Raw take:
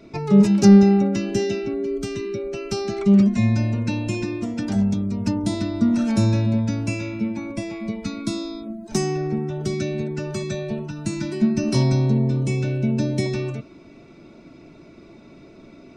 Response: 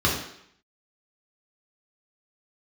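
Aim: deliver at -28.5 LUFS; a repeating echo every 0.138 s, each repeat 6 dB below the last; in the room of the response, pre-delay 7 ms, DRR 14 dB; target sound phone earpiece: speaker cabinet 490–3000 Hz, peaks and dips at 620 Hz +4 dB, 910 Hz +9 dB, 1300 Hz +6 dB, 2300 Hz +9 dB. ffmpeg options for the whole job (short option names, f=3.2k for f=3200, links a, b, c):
-filter_complex "[0:a]aecho=1:1:138|276|414|552|690|828:0.501|0.251|0.125|0.0626|0.0313|0.0157,asplit=2[a][b];[1:a]atrim=start_sample=2205,adelay=7[c];[b][c]afir=irnorm=-1:irlink=0,volume=-29.5dB[d];[a][d]amix=inputs=2:normalize=0,highpass=490,equalizer=f=620:t=q:w=4:g=4,equalizer=f=910:t=q:w=4:g=9,equalizer=f=1.3k:t=q:w=4:g=6,equalizer=f=2.3k:t=q:w=4:g=9,lowpass=f=3k:w=0.5412,lowpass=f=3k:w=1.3066,volume=-1dB"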